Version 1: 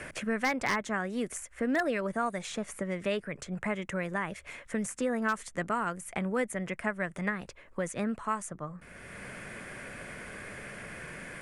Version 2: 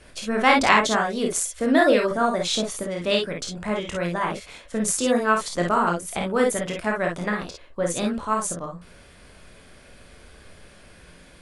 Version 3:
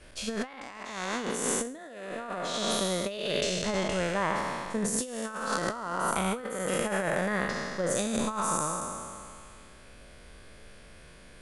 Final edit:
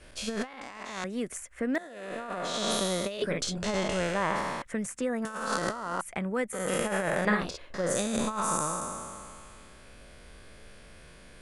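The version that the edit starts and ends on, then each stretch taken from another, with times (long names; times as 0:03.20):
3
0:01.04–0:01.78: punch in from 1
0:03.22–0:03.63: punch in from 2
0:04.62–0:05.25: punch in from 1
0:06.01–0:06.53: punch in from 1
0:07.25–0:07.74: punch in from 2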